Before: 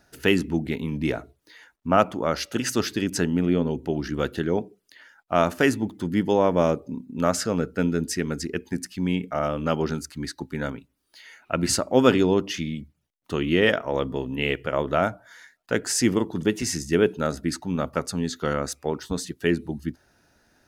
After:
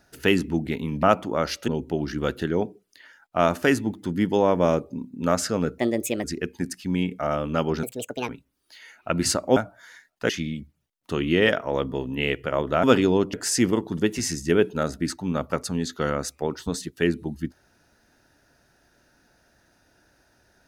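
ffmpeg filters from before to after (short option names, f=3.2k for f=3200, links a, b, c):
-filter_complex "[0:a]asplit=11[a][b][c][d][e][f][g][h][i][j][k];[a]atrim=end=1.032[l];[b]atrim=start=1.918:end=2.572[m];[c]atrim=start=3.638:end=7.744[n];[d]atrim=start=7.74:end=8.36,asetpts=PTS-STARTPTS,asetrate=59535,aresample=44100,atrim=end_sample=20253,asetpts=PTS-STARTPTS[o];[e]atrim=start=8.356:end=9.954[p];[f]atrim=start=9.95:end=10.72,asetpts=PTS-STARTPTS,asetrate=74529,aresample=44100[q];[g]atrim=start=10.716:end=12.002[r];[h]atrim=start=15.038:end=15.772[s];[i]atrim=start=12.498:end=15.042[t];[j]atrim=start=11.998:end=12.502[u];[k]atrim=start=15.768[v];[l][m]acrossfade=d=0.004:c1=hsin:c2=hsin[w];[w][n]acrossfade=d=0.004:c1=hsin:c2=hsin[x];[x][o]acrossfade=d=0.004:c1=hsin:c2=hsin[y];[y][p]acrossfade=d=0.004:c1=hsin:c2=hsin[z];[z][q]acrossfade=d=0.004:c1=hsin:c2=hsin[aa];[aa][r]acrossfade=d=0.004:c1=hsin:c2=hsin[ab];[ab][s]acrossfade=d=0.004:c1=hsin:c2=hsin[ac];[ac][t]acrossfade=d=0.004:c1=hsin:c2=hsin[ad];[ad][u]acrossfade=d=0.004:c1=hsin:c2=hsin[ae];[ae][v]acrossfade=d=0.004:c1=hsin:c2=hsin"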